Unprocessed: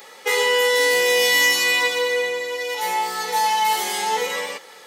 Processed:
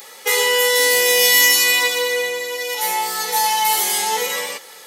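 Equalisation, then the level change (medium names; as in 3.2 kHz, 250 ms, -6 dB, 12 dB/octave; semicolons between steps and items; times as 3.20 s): treble shelf 4.4 kHz +9.5 dB; peaking EQ 12 kHz +4.5 dB 0.45 oct; 0.0 dB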